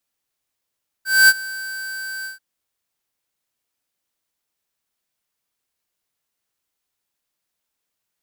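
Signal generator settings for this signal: ADSR square 1.55 kHz, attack 234 ms, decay 44 ms, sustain -20.5 dB, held 1.20 s, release 137 ms -9 dBFS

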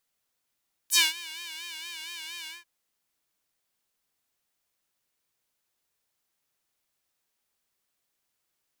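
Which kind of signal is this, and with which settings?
synth patch with vibrato E4, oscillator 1 square, oscillator 2 saw, interval +12 st, oscillator 2 level -18 dB, sub -20.5 dB, filter highpass, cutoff 1.8 kHz, Q 1.7, filter envelope 3 oct, filter decay 0.08 s, filter sustain 20%, attack 38 ms, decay 0.19 s, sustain -22.5 dB, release 0.17 s, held 1.57 s, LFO 4.3 Hz, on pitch 91 cents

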